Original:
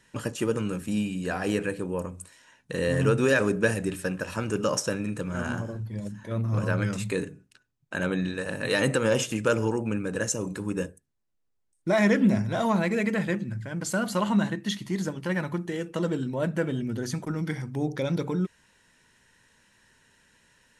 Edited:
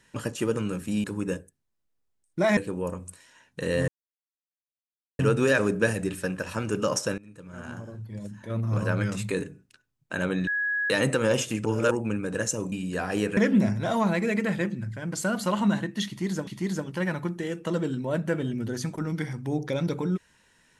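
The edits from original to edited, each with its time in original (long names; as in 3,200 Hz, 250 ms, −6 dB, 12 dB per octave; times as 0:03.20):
0:01.04–0:01.69: swap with 0:10.53–0:12.06
0:03.00: splice in silence 1.31 s
0:04.99–0:06.49: fade in, from −23.5 dB
0:08.28–0:08.71: beep over 1,670 Hz −24 dBFS
0:09.46–0:09.72: reverse
0:14.76–0:15.16: repeat, 2 plays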